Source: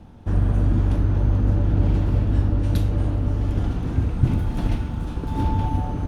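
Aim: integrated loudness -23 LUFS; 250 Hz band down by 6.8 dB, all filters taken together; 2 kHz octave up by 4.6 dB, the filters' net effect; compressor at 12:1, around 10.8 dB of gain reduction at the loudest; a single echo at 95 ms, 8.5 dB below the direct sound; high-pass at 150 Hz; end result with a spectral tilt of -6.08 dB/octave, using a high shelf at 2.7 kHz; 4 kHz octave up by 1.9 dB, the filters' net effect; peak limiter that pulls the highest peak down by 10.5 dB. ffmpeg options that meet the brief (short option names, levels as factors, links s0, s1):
-af "highpass=150,equalizer=f=250:t=o:g=-8,equalizer=f=2000:t=o:g=8,highshelf=f=2700:g=-6.5,equalizer=f=4000:t=o:g=4.5,acompressor=threshold=0.0282:ratio=12,alimiter=level_in=2.66:limit=0.0631:level=0:latency=1,volume=0.376,aecho=1:1:95:0.376,volume=7.94"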